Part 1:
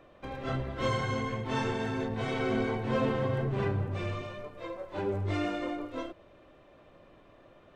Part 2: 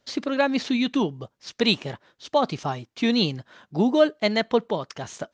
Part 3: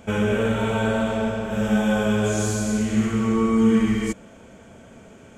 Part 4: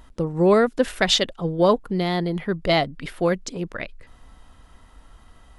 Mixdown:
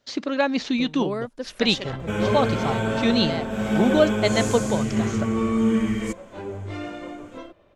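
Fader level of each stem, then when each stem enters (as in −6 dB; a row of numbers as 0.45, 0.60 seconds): −1.5, 0.0, −3.0, −12.5 decibels; 1.40, 0.00, 2.00, 0.60 seconds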